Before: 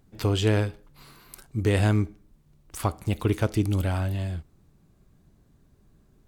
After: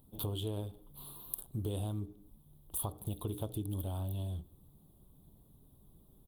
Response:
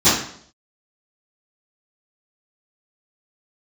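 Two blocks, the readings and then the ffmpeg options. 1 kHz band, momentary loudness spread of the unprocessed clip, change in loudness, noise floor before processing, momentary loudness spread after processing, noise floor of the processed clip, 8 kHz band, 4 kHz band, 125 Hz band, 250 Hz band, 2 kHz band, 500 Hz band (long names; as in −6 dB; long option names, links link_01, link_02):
−14.5 dB, 11 LU, −13.5 dB, −61 dBFS, 10 LU, −64 dBFS, −3.0 dB, −12.0 dB, −13.0 dB, −14.0 dB, below −30 dB, −15.0 dB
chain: -filter_complex "[0:a]highshelf=frequency=8200:gain=11,bandreject=frequency=60:width_type=h:width=6,bandreject=frequency=120:width_type=h:width=6,bandreject=frequency=180:width_type=h:width=6,bandreject=frequency=240:width_type=h:width=6,bandreject=frequency=300:width_type=h:width=6,bandreject=frequency=360:width_type=h:width=6,bandreject=frequency=420:width_type=h:width=6,bandreject=frequency=480:width_type=h:width=6,asplit=2[link_01][link_02];[1:a]atrim=start_sample=2205,asetrate=41013,aresample=44100[link_03];[link_02][link_03]afir=irnorm=-1:irlink=0,volume=-46dB[link_04];[link_01][link_04]amix=inputs=2:normalize=0,acompressor=threshold=-34dB:ratio=5,firequalizer=gain_entry='entry(1000,0);entry(1900,-27);entry(3400,5);entry(5300,-21);entry(10000,4)':delay=0.05:min_phase=1,volume=-1.5dB" -ar 48000 -c:a libopus -b:a 24k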